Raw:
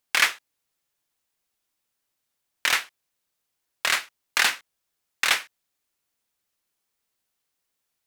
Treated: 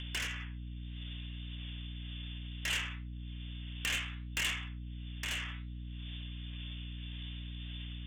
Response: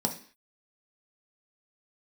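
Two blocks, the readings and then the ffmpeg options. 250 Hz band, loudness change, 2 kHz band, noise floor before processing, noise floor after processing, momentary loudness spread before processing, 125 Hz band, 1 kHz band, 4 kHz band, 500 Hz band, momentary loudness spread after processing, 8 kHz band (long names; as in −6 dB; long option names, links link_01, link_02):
+7.5 dB, −16.0 dB, −13.5 dB, −80 dBFS, −43 dBFS, 7 LU, can't be measured, −18.5 dB, −10.0 dB, −14.5 dB, 11 LU, −13.0 dB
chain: -filter_complex "[1:a]atrim=start_sample=2205,afade=type=out:start_time=0.24:duration=0.01,atrim=end_sample=11025[link_01];[0:a][link_01]afir=irnorm=-1:irlink=0,lowpass=frequency=3100:width_type=q:width=0.5098,lowpass=frequency=3100:width_type=q:width=0.6013,lowpass=frequency=3100:width_type=q:width=0.9,lowpass=frequency=3100:width_type=q:width=2.563,afreqshift=-3700,flanger=delay=4.7:depth=7.2:regen=72:speed=0.64:shape=triangular,acompressor=threshold=-39dB:ratio=2.5,highpass=810,acompressor=mode=upward:threshold=-37dB:ratio=2.5,asoftclip=type=tanh:threshold=-36.5dB,tremolo=f=1.8:d=0.39,aeval=exprs='val(0)+0.00158*(sin(2*PI*60*n/s)+sin(2*PI*2*60*n/s)/2+sin(2*PI*3*60*n/s)/3+sin(2*PI*4*60*n/s)/4+sin(2*PI*5*60*n/s)/5)':channel_layout=same,equalizer=frequency=1200:width_type=o:width=2.6:gain=-12.5,volume=15dB"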